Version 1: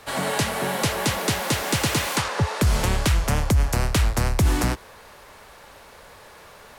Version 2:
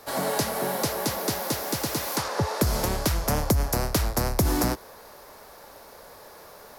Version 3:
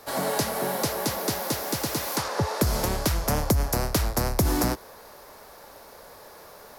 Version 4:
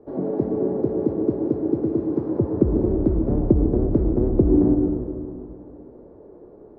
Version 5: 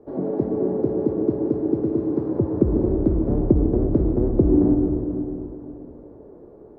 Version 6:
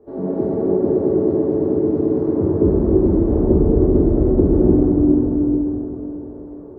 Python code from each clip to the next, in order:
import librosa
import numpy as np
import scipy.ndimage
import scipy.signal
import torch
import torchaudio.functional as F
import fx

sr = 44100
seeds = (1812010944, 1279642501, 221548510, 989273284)

y1 = fx.tilt_shelf(x, sr, db=-8.0, hz=1200.0)
y1 = fx.rider(y1, sr, range_db=10, speed_s=0.5)
y1 = fx.curve_eq(y1, sr, hz=(100.0, 310.0, 650.0, 2900.0, 5100.0, 8400.0, 12000.0), db=(0, 6, 4, -16, -7, -13, -3))
y2 = y1
y3 = fx.lowpass_res(y2, sr, hz=350.0, q=3.5)
y3 = fx.rev_plate(y3, sr, seeds[0], rt60_s=2.4, hf_ratio=0.4, predelay_ms=100, drr_db=3.5)
y3 = y3 * 10.0 ** (1.5 / 20.0)
y4 = fx.echo_feedback(y3, sr, ms=493, feedback_pct=30, wet_db=-13.0)
y5 = fx.rev_plate(y4, sr, seeds[1], rt60_s=3.1, hf_ratio=0.65, predelay_ms=0, drr_db=-6.0)
y5 = y5 * 10.0 ** (-2.5 / 20.0)